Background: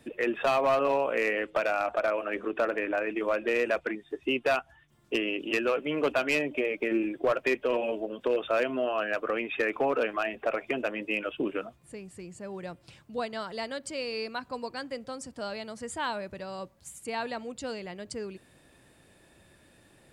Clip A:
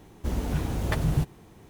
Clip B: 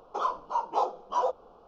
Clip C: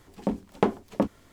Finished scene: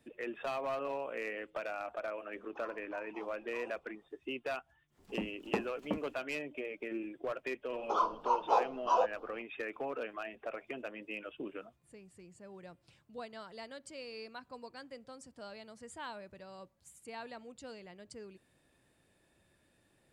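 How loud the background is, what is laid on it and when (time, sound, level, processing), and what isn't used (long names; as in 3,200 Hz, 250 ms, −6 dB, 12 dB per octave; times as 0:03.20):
background −12 dB
0:02.41: mix in B −16.5 dB + downward compressor 2.5 to 1, threshold −34 dBFS
0:04.91: mix in C −12 dB, fades 0.10 s
0:07.75: mix in B −1.5 dB
not used: A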